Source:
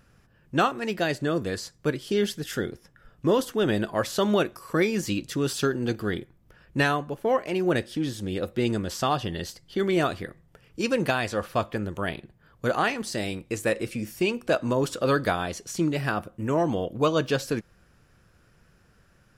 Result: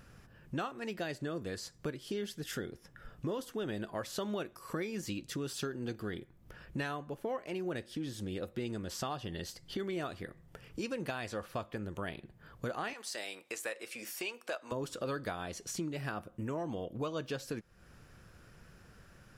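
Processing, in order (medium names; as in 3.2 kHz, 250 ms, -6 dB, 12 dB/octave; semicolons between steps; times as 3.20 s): 12.93–14.72 s: high-pass 670 Hz 12 dB/octave; compression 3:1, threshold -43 dBFS, peak gain reduction 18.5 dB; trim +2.5 dB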